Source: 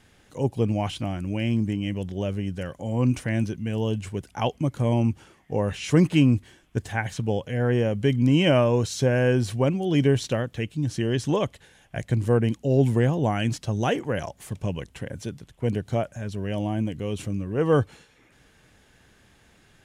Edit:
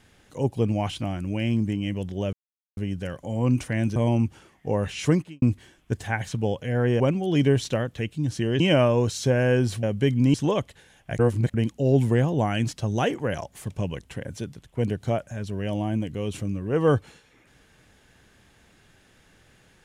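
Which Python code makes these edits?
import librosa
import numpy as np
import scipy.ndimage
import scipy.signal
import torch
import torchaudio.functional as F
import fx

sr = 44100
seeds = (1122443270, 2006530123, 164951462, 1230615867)

y = fx.edit(x, sr, fx.insert_silence(at_s=2.33, length_s=0.44),
    fx.cut(start_s=3.52, length_s=1.29),
    fx.fade_out_span(start_s=5.93, length_s=0.34, curve='qua'),
    fx.swap(start_s=7.85, length_s=0.51, other_s=9.59, other_length_s=1.6),
    fx.reverse_span(start_s=12.04, length_s=0.35), tone=tone)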